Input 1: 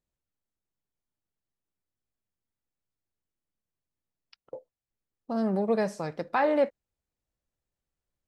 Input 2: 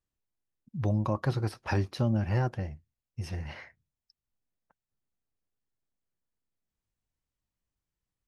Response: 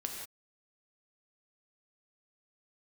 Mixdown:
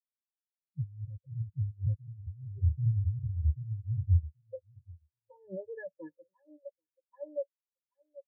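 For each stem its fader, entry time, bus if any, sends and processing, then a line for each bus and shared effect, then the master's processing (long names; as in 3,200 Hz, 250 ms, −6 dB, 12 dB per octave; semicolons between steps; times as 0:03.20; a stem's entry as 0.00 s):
−1.5 dB, 0.00 s, no send, echo send −13 dB, EQ curve with evenly spaced ripples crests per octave 1.2, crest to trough 16 dB
−1.0 dB, 0.00 s, no send, echo send −4 dB, Butterworth low-pass 680 Hz 96 dB per octave; low-shelf EQ 130 Hz +8.5 dB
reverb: not used
echo: repeating echo 782 ms, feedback 44%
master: comb filter 2.3 ms, depth 89%; compressor whose output falls as the input rises −28 dBFS, ratio −1; every bin expanded away from the loudest bin 4 to 1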